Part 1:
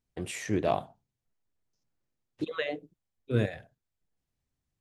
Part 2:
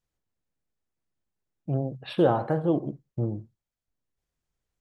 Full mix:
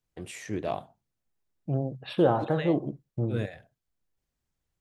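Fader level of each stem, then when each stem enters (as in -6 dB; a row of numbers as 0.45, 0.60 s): -4.0, -1.0 dB; 0.00, 0.00 s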